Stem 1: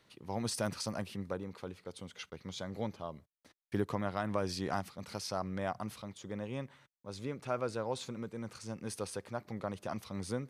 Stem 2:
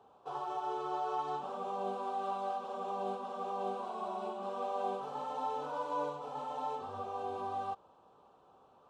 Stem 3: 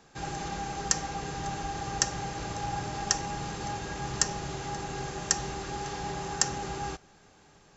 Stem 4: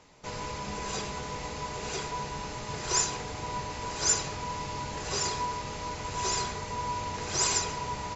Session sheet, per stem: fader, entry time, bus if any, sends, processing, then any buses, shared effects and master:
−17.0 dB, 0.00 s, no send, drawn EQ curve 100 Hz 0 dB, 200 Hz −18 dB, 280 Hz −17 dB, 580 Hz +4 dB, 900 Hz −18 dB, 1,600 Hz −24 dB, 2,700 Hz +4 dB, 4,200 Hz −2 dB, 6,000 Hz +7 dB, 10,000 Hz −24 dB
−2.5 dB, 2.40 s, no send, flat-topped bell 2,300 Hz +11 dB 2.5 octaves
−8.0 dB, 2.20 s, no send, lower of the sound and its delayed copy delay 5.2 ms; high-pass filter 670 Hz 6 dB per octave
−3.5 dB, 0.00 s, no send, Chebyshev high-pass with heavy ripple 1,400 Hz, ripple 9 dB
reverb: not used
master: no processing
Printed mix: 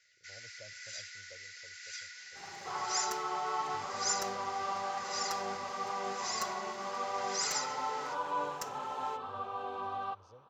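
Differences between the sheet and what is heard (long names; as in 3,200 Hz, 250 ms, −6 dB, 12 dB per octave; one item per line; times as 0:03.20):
stem 4 −3.5 dB → +2.5 dB
master: extra high-shelf EQ 2,900 Hz −8.5 dB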